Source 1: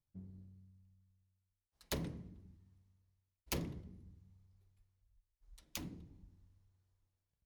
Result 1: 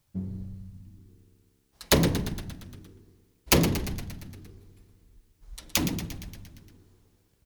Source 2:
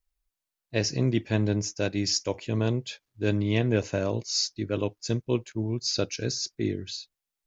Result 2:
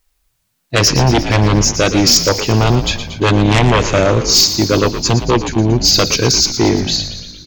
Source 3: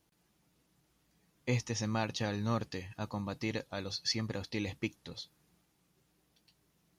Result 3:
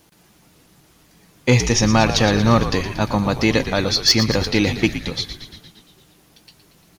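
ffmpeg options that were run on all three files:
-filter_complex "[0:a]aeval=exprs='0.335*sin(PI/2*3.98*val(0)/0.335)':c=same,lowshelf=f=110:g=-5,asplit=9[s0][s1][s2][s3][s4][s5][s6][s7][s8];[s1]adelay=116,afreqshift=-68,volume=0.299[s9];[s2]adelay=232,afreqshift=-136,volume=0.191[s10];[s3]adelay=348,afreqshift=-204,volume=0.122[s11];[s4]adelay=464,afreqshift=-272,volume=0.0785[s12];[s5]adelay=580,afreqshift=-340,volume=0.0501[s13];[s6]adelay=696,afreqshift=-408,volume=0.032[s14];[s7]adelay=812,afreqshift=-476,volume=0.0204[s15];[s8]adelay=928,afreqshift=-544,volume=0.0132[s16];[s0][s9][s10][s11][s12][s13][s14][s15][s16]amix=inputs=9:normalize=0,volume=1.58"

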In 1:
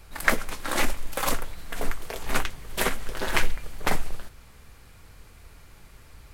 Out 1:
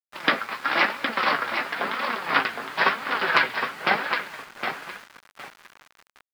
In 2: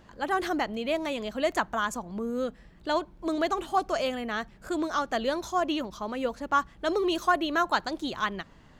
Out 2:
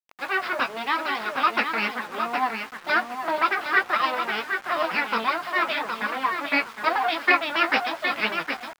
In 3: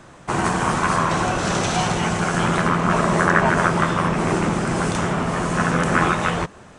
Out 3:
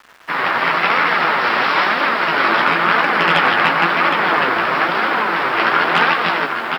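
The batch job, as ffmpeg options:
-filter_complex "[0:a]aresample=11025,aeval=exprs='abs(val(0))':c=same,aresample=44100,highpass=f=160:w=0.5412,highpass=f=160:w=1.3066,asplit=2[s0][s1];[s1]adelay=18,volume=0.355[s2];[s0][s2]amix=inputs=2:normalize=0,dynaudnorm=f=130:g=7:m=1.58,aecho=1:1:763|1526|2289:0.473|0.104|0.0229,asoftclip=type=hard:threshold=0.376,flanger=delay=3.3:depth=5.7:regen=46:speed=0.98:shape=triangular,acrusher=bits=7:mix=0:aa=0.000001,equalizer=f=1400:w=0.59:g=13,volume=0.891"

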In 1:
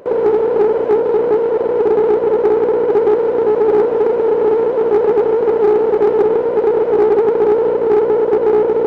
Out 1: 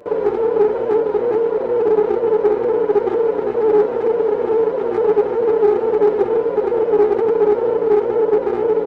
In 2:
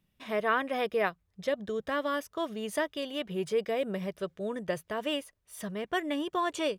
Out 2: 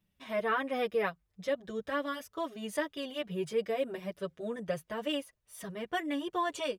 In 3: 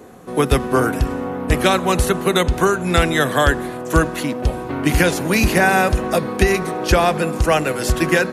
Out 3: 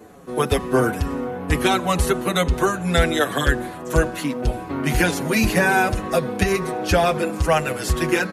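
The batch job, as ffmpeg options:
-filter_complex "[0:a]asplit=2[s0][s1];[s1]adelay=6.3,afreqshift=-2.2[s2];[s0][s2]amix=inputs=2:normalize=1"

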